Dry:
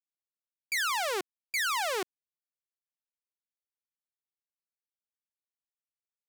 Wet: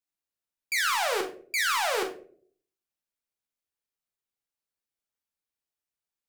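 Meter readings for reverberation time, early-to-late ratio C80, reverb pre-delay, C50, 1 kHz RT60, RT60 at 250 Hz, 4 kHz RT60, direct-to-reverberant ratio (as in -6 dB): 0.50 s, 15.0 dB, 14 ms, 9.0 dB, 0.40 s, 0.70 s, 0.25 s, 3.0 dB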